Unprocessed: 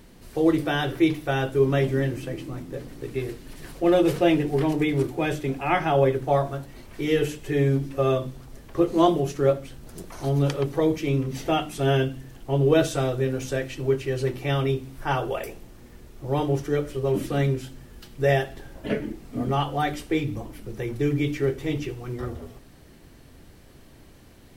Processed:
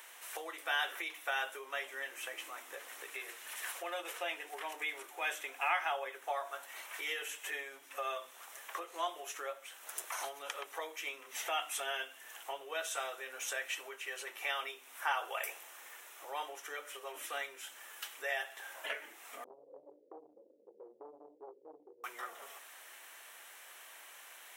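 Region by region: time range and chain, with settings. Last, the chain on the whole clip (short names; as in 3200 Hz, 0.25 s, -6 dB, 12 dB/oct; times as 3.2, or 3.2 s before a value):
19.44–22.04 delta modulation 16 kbps, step -37 dBFS + steep low-pass 540 Hz 96 dB/oct + core saturation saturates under 160 Hz
whole clip: bell 4600 Hz -13.5 dB 0.43 oct; compressor 3:1, threshold -35 dBFS; Bessel high-pass 1200 Hz, order 4; gain +8 dB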